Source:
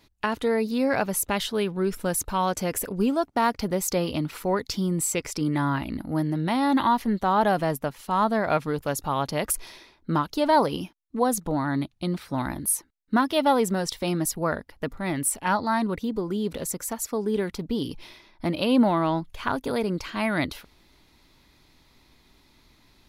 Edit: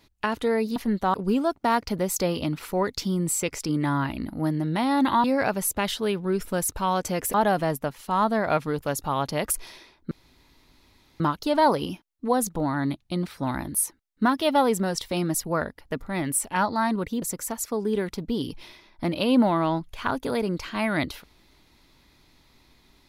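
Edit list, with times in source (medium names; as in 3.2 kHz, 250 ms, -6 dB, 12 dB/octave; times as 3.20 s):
0.76–2.86 s: swap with 6.96–7.34 s
10.11 s: insert room tone 1.09 s
16.13–16.63 s: delete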